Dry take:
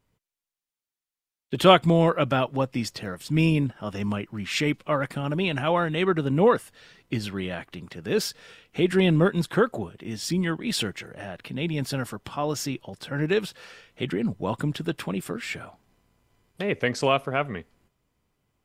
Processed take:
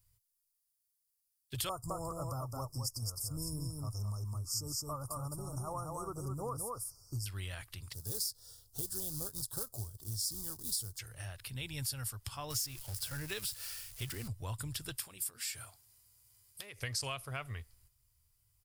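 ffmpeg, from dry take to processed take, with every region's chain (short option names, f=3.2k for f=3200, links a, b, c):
-filter_complex "[0:a]asettb=1/sr,asplit=3[a][b][c];[a]atrim=end=1.694[d];[b]atrim=start=1.69:end=7.26,asetpts=PTS-STARTPTS,afade=t=in:d=0.004:c=qsin,afade=t=out:st=5.566:d=0.004:c=qsin,asuperstop=centerf=2500:order=20:qfactor=0.67,equalizer=f=1.5k:w=4:g=10.5,aecho=1:1:213:0.631,atrim=end_sample=245637[e];[c]atrim=start=7.256[f];[d][e]acrossfade=d=0.004:c1=hsin:c2=qsin[g];[g][f]acrossfade=d=0.004:c1=qsin:c2=hsin,asettb=1/sr,asplit=3[h][i][j];[h]atrim=end=7.934[k];[i]atrim=start=7.93:end=10.99,asetpts=PTS-STARTPTS,afade=t=in:d=0.004:c=qsin,afade=t=out:st=3.056:d=0.004:c=qsin,equalizer=f=1.4k:t=o:w=1:g=-3.5,acrusher=bits=4:mode=log:mix=0:aa=0.000001,asuperstop=centerf=2300:order=4:qfactor=0.68[l];[j]atrim=start=10.986[m];[k][l]acrossfade=d=0.004:c1=hsin:c2=qsin[n];[n][m]acrossfade=d=0.004:c1=qsin:c2=hsin,asettb=1/sr,asplit=3[o][p][q];[o]atrim=end=12.504[r];[p]atrim=start=12.5:end=14.28,asetpts=PTS-STARTPTS,afade=t=in:d=0.004:c=qsin,afade=t=out:st=1.776:d=0.004:c=qsin,aeval=exprs='val(0)+0.5*0.0141*sgn(val(0))':c=same,agate=range=-33dB:threshold=-36dB:ratio=3:release=100:detection=peak[s];[q]atrim=start=14.276[t];[r][s]acrossfade=d=0.004:c1=hsin:c2=qsin[u];[u][t]acrossfade=d=0.004:c1=qsin:c2=hsin,asettb=1/sr,asplit=3[v][w][x];[v]atrim=end=14.974[y];[w]atrim=start=14.97:end=16.79,asetpts=PTS-STARTPTS,afade=t=in:d=0.004:c=qsin,afade=t=out:st=1.816:d=0.004:c=qsin,bass=f=250:g=-1,treble=f=4k:g=5,acompressor=threshold=-32dB:ratio=6:attack=3.2:release=140:knee=1:detection=peak,highpass=f=170:p=1[z];[x]atrim=start=16.786[aa];[y][z]acrossfade=d=0.004:c1=hsin:c2=qsin[ab];[ab][aa]acrossfade=d=0.004:c1=qsin:c2=hsin,firequalizer=gain_entry='entry(110,0);entry(170,-25);entry(1100,-14);entry(5900,-3);entry(9600,9)':delay=0.05:min_phase=1,acompressor=threshold=-39dB:ratio=4,equalizer=f=4.9k:t=o:w=0.43:g=8.5,volume=2.5dB"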